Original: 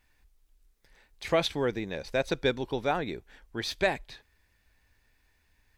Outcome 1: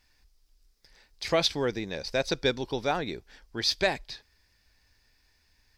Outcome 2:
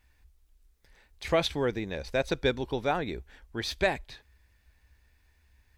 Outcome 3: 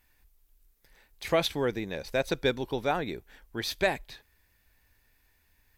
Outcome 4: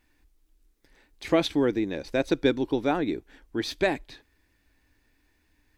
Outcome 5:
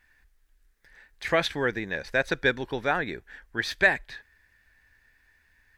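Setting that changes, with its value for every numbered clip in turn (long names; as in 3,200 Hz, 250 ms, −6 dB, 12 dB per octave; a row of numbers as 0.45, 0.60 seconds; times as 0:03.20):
parametric band, centre frequency: 5,000, 65, 14,000, 300, 1,700 Hertz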